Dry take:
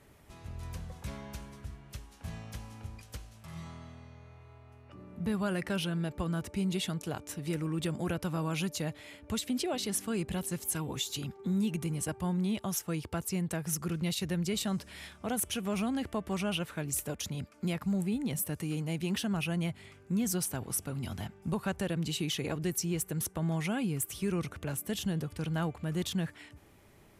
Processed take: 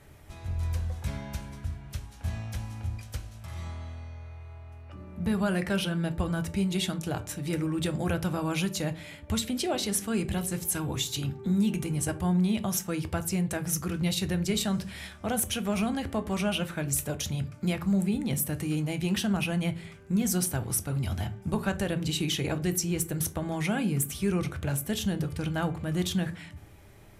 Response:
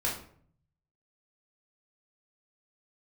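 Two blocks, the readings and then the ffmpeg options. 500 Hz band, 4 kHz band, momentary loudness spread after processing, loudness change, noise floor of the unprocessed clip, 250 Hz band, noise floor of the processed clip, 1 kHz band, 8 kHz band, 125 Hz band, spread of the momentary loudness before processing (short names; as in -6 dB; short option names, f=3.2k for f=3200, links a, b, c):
+4.0 dB, +4.0 dB, 12 LU, +4.0 dB, -57 dBFS, +4.5 dB, -49 dBFS, +4.5 dB, +4.5 dB, +5.0 dB, 14 LU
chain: -filter_complex "[0:a]asplit=2[a][b];[1:a]atrim=start_sample=2205,asetrate=70560,aresample=44100,lowshelf=f=130:g=9.5[c];[b][c]afir=irnorm=-1:irlink=0,volume=-10.5dB[d];[a][d]amix=inputs=2:normalize=0,volume=3dB"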